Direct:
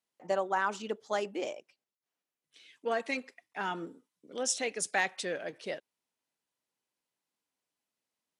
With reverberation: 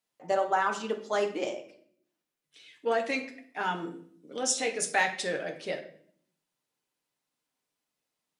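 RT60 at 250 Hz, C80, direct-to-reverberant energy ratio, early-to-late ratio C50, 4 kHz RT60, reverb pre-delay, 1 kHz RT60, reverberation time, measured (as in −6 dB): 0.95 s, 14.5 dB, 3.0 dB, 10.5 dB, 0.50 s, 7 ms, 0.50 s, 0.60 s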